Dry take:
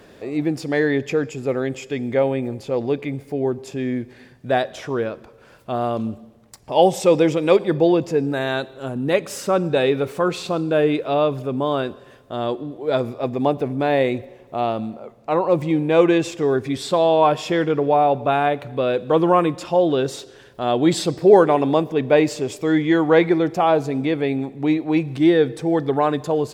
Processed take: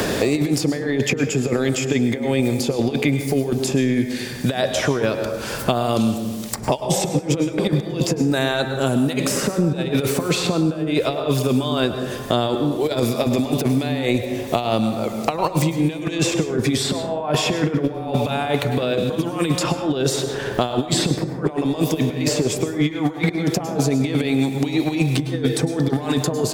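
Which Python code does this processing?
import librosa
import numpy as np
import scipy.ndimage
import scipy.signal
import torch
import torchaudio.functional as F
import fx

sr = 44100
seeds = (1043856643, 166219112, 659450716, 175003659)

y = fx.low_shelf(x, sr, hz=140.0, db=-6.5)
y = fx.over_compress(y, sr, threshold_db=-25.0, ratio=-0.5)
y = fx.bass_treble(y, sr, bass_db=5, treble_db=8)
y = fx.rev_plate(y, sr, seeds[0], rt60_s=0.76, hf_ratio=0.4, predelay_ms=90, drr_db=8.5)
y = fx.band_squash(y, sr, depth_pct=100)
y = y * librosa.db_to_amplitude(2.0)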